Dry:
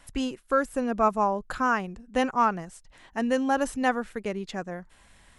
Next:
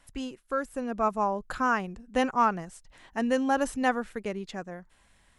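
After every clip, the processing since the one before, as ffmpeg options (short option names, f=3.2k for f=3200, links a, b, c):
-af "dynaudnorm=f=260:g=9:m=6dB,volume=-6.5dB"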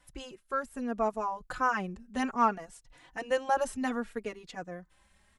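-filter_complex "[0:a]asplit=2[a][b];[b]adelay=3.5,afreqshift=0.63[c];[a][c]amix=inputs=2:normalize=1"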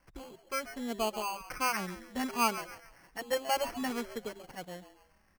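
-filter_complex "[0:a]asplit=5[a][b][c][d][e];[b]adelay=136,afreqshift=150,volume=-13dB[f];[c]adelay=272,afreqshift=300,volume=-21.9dB[g];[d]adelay=408,afreqshift=450,volume=-30.7dB[h];[e]adelay=544,afreqshift=600,volume=-39.6dB[i];[a][f][g][h][i]amix=inputs=5:normalize=0,acrusher=samples=12:mix=1:aa=0.000001,volume=-3dB"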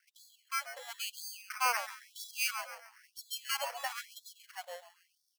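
-af "afftfilt=real='re*gte(b*sr/1024,450*pow(3400/450,0.5+0.5*sin(2*PI*1*pts/sr)))':imag='im*gte(b*sr/1024,450*pow(3400/450,0.5+0.5*sin(2*PI*1*pts/sr)))':win_size=1024:overlap=0.75,volume=1dB"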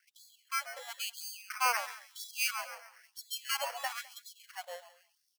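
-af "aecho=1:1:208:0.0708,volume=1dB"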